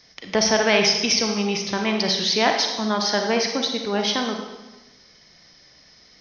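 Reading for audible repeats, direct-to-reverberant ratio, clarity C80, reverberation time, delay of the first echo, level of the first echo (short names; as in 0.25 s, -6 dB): none, 3.0 dB, 6.5 dB, 1.1 s, none, none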